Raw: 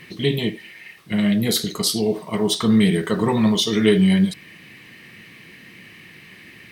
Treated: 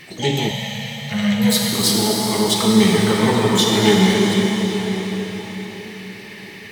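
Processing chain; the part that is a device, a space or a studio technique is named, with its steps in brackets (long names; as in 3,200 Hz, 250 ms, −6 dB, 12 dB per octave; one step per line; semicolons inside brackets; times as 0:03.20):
shimmer-style reverb (pitch-shifted copies added +12 semitones −10 dB; convolution reverb RT60 5.3 s, pre-delay 47 ms, DRR −1.5 dB)
0:00.51–0:01.73: Chebyshev band-stop filter 230–460 Hz, order 5
parametric band 200 Hz −3.5 dB 2.8 octaves
level +2 dB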